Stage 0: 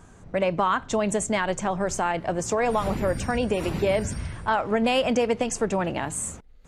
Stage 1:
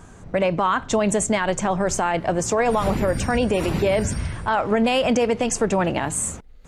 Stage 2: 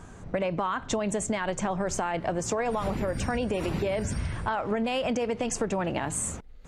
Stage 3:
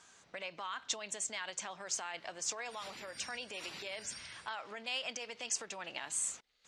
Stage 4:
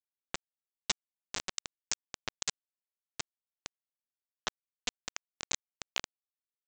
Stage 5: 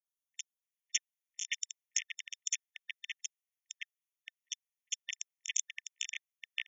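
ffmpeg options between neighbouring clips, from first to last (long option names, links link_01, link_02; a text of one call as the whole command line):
ffmpeg -i in.wav -af "alimiter=limit=-17dB:level=0:latency=1:release=33,volume=5.5dB" out.wav
ffmpeg -i in.wav -af "highshelf=frequency=8600:gain=-6,acompressor=threshold=-24dB:ratio=5,volume=-1.5dB" out.wav
ffmpeg -i in.wav -af "bandpass=frequency=4600:width_type=q:width=1.2:csg=0,volume=1.5dB" out.wav
ffmpeg -i in.wav -af "acompressor=threshold=-50dB:ratio=2,aresample=16000,acrusher=bits=5:mix=0:aa=0.000001,aresample=44100,volume=14.5dB" out.wav
ffmpeg -i in.wav -filter_complex "[0:a]acrossover=split=570|3200[link_01][link_02][link_03];[link_03]adelay=50[link_04];[link_02]adelay=620[link_05];[link_01][link_05][link_04]amix=inputs=3:normalize=0,afftfilt=real='re*eq(mod(floor(b*sr/1024/1800),2),1)':imag='im*eq(mod(floor(b*sr/1024/1800),2),1)':win_size=1024:overlap=0.75,volume=4.5dB" out.wav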